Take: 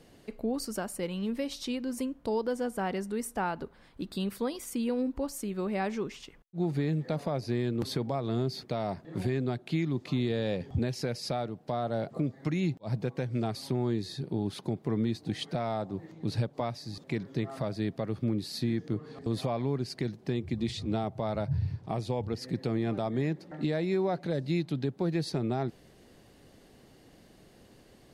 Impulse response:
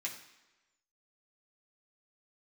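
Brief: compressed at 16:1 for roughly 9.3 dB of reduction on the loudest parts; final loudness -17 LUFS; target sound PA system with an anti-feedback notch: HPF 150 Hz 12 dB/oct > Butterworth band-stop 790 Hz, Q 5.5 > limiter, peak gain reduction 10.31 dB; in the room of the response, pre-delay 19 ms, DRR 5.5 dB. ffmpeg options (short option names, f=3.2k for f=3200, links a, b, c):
-filter_complex "[0:a]acompressor=threshold=-34dB:ratio=16,asplit=2[a][b];[1:a]atrim=start_sample=2205,adelay=19[c];[b][c]afir=irnorm=-1:irlink=0,volume=-6.5dB[d];[a][d]amix=inputs=2:normalize=0,highpass=150,asuperstop=centerf=790:order=8:qfactor=5.5,volume=27.5dB,alimiter=limit=-8dB:level=0:latency=1"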